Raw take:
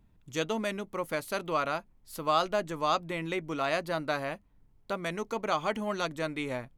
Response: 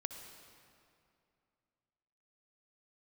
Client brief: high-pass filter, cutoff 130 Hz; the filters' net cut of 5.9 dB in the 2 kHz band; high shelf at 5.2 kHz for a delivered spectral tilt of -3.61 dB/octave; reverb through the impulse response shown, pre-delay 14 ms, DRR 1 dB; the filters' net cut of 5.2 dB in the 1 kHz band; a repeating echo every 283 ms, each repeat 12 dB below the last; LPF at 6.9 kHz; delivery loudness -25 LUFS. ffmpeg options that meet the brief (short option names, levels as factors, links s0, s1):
-filter_complex "[0:a]highpass=130,lowpass=6900,equalizer=f=1000:t=o:g=-5,equalizer=f=2000:t=o:g=-7,highshelf=f=5200:g=5,aecho=1:1:283|566|849:0.251|0.0628|0.0157,asplit=2[s0][s1];[1:a]atrim=start_sample=2205,adelay=14[s2];[s1][s2]afir=irnorm=-1:irlink=0,volume=1.06[s3];[s0][s3]amix=inputs=2:normalize=0,volume=2.24"